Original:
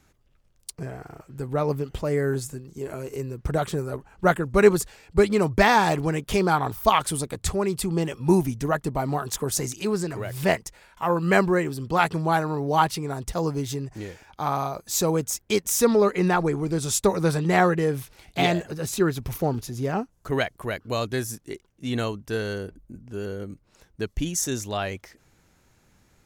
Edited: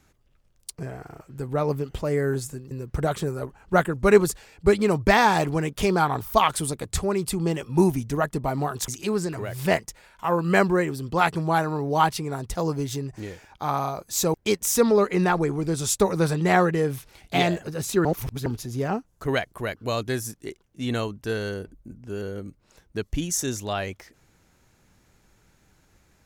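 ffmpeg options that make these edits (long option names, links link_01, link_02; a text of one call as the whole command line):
ffmpeg -i in.wav -filter_complex "[0:a]asplit=6[link_01][link_02][link_03][link_04][link_05][link_06];[link_01]atrim=end=2.712[link_07];[link_02]atrim=start=3.218:end=9.392[link_08];[link_03]atrim=start=9.658:end=15.122[link_09];[link_04]atrim=start=15.378:end=19.092[link_10];[link_05]atrim=start=19.088:end=19.502,asetpts=PTS-STARTPTS,areverse[link_11];[link_06]atrim=start=19.498[link_12];[link_07][link_08]acrossfade=duration=0.004:curve1=hsin:curve2=hsin[link_13];[link_13][link_09]acrossfade=duration=0.004:curve1=hsin:curve2=hsin[link_14];[link_14][link_10]acrossfade=duration=0.004:curve1=hsin:curve2=hsin[link_15];[link_15][link_11]acrossfade=duration=0.004:curve1=hsin:curve2=hsin[link_16];[link_16][link_12]acrossfade=duration=0.004:curve1=hsin:curve2=hsin" out.wav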